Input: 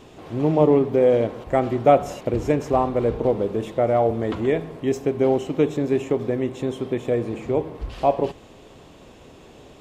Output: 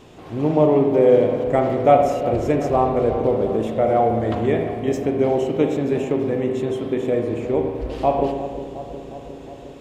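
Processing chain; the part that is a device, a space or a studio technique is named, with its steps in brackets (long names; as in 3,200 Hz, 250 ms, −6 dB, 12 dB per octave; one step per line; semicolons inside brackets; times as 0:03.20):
dub delay into a spring reverb (feedback echo with a low-pass in the loop 359 ms, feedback 75%, low-pass 1,400 Hz, level −11.5 dB; spring reverb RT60 1.2 s, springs 36/54 ms, chirp 75 ms, DRR 4 dB)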